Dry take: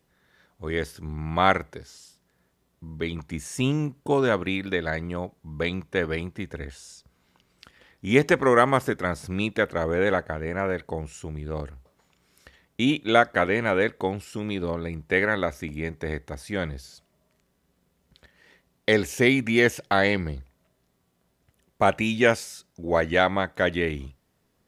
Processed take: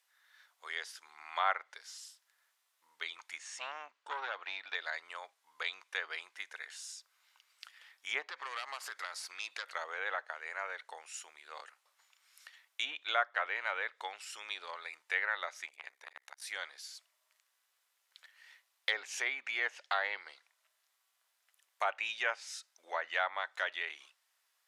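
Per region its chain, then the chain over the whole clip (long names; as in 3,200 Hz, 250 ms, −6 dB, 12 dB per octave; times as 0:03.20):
0:03.38–0:04.75: high-frequency loss of the air 110 metres + saturating transformer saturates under 1,000 Hz
0:08.23–0:09.75: phase distortion by the signal itself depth 0.19 ms + parametric band 4,500 Hz +9 dB 0.2 octaves + downward compressor 12 to 1, threshold −26 dBFS
0:15.66–0:16.42: amplitude modulation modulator 66 Hz, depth 90% + saturating transformer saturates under 960 Hz
whole clip: treble cut that deepens with the level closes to 1,900 Hz, closed at −16.5 dBFS; Bessel high-pass filter 1,400 Hz, order 4; dynamic equaliser 2,000 Hz, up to −6 dB, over −40 dBFS, Q 0.72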